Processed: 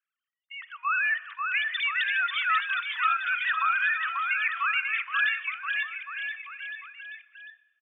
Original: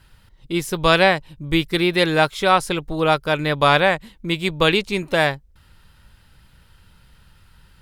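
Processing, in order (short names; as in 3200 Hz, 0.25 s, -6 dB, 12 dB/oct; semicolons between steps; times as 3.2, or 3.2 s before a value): sine-wave speech; steep high-pass 1200 Hz 48 dB/oct; gate -56 dBFS, range -24 dB; level quantiser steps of 14 dB; transient shaper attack -4 dB, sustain +7 dB; limiter -25 dBFS, peak gain reduction 6 dB; bouncing-ball echo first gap 0.54 s, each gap 0.9×, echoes 5; shoebox room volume 1500 m³, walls mixed, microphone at 0.31 m; gain +5 dB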